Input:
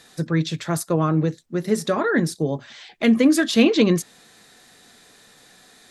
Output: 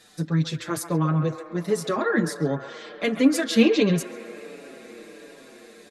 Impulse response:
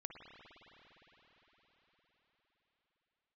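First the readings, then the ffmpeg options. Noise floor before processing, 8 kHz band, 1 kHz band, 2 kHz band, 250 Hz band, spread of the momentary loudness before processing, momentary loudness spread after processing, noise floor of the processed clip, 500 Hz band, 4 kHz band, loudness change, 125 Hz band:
−52 dBFS, −3.0 dB, −2.5 dB, −3.0 dB, −3.5 dB, 10 LU, 22 LU, −49 dBFS, −2.5 dB, −3.0 dB, −3.0 dB, −1.5 dB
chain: -filter_complex "[0:a]asplit=2[link_01][link_02];[link_02]acrossover=split=410 4800:gain=0.1 1 0.0708[link_03][link_04][link_05];[link_03][link_04][link_05]amix=inputs=3:normalize=0[link_06];[1:a]atrim=start_sample=2205,asetrate=28665,aresample=44100,adelay=135[link_07];[link_06][link_07]afir=irnorm=-1:irlink=0,volume=-7dB[link_08];[link_01][link_08]amix=inputs=2:normalize=0,asplit=2[link_09][link_10];[link_10]adelay=6.1,afreqshift=-1.4[link_11];[link_09][link_11]amix=inputs=2:normalize=1"

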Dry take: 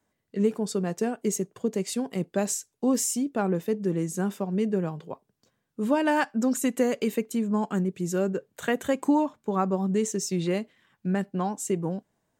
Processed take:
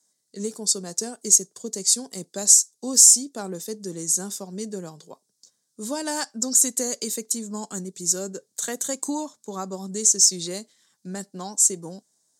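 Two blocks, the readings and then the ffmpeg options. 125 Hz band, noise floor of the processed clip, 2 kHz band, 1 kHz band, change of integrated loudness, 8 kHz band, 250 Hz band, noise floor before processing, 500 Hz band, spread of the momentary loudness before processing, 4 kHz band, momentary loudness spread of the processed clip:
−8.5 dB, −74 dBFS, −6.5 dB, −6.0 dB, +7.5 dB, +17.0 dB, −7.0 dB, −78 dBFS, −6.0 dB, 7 LU, +12.5 dB, 19 LU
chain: -af "aexciter=amount=11.4:drive=8.6:freq=4200,highpass=170,lowpass=7600,volume=-6dB"

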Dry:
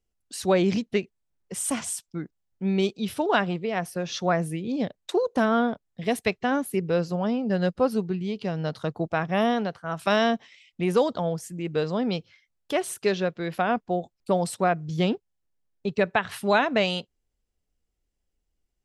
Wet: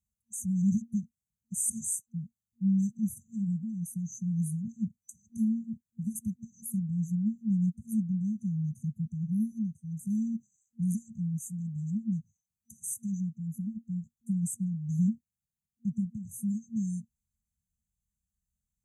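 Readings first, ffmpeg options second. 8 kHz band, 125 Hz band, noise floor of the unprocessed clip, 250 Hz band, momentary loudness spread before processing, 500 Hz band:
−0.5 dB, 0.0 dB, −79 dBFS, −2.5 dB, 8 LU, below −40 dB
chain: -af "highpass=63,afftfilt=real='re*(1-between(b*sr/4096,230,6000))':imag='im*(1-between(b*sr/4096,230,6000))':win_size=4096:overlap=0.75"

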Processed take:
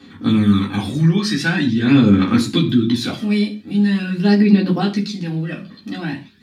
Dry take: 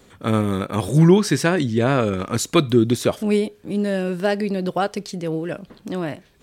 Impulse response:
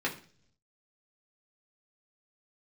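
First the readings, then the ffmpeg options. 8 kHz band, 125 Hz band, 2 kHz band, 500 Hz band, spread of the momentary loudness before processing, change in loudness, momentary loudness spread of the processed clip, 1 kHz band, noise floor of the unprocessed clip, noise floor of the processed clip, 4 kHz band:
−5.0 dB, +2.5 dB, +4.0 dB, −5.0 dB, 12 LU, +3.5 dB, 13 LU, −2.5 dB, −53 dBFS, −43 dBFS, +5.0 dB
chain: -filter_complex "[0:a]equalizer=frequency=250:width_type=o:width=1:gain=8,equalizer=frequency=500:width_type=o:width=1:gain=-12,equalizer=frequency=4000:width_type=o:width=1:gain=10,alimiter=limit=-10dB:level=0:latency=1:release=49,aphaser=in_gain=1:out_gain=1:delay=1.7:decay=0.56:speed=0.44:type=sinusoidal[link_01];[1:a]atrim=start_sample=2205,afade=type=out:start_time=0.21:duration=0.01,atrim=end_sample=9702[link_02];[link_01][link_02]afir=irnorm=-1:irlink=0,volume=-6dB"

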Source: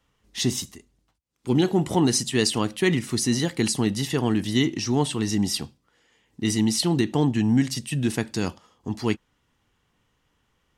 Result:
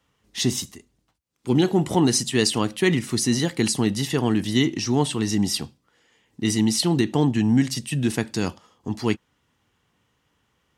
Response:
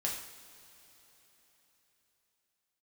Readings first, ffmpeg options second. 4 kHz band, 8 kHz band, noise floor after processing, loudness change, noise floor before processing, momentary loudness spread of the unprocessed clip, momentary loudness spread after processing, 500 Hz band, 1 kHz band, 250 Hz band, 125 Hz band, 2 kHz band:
+1.5 dB, +1.5 dB, −71 dBFS, +1.5 dB, −71 dBFS, 10 LU, 10 LU, +1.5 dB, +1.5 dB, +1.5 dB, +1.0 dB, +1.5 dB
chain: -af "highpass=65,volume=1.5dB"

